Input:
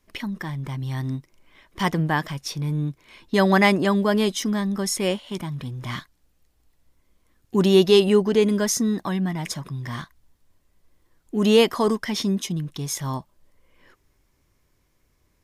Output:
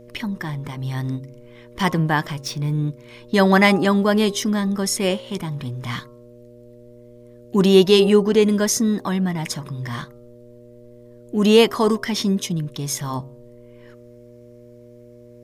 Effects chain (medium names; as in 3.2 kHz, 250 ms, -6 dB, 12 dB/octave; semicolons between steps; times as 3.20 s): 2.40–2.84 s: median filter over 3 samples; mains buzz 120 Hz, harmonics 5, -48 dBFS 0 dB/octave; de-hum 134.8 Hz, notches 10; trim +3 dB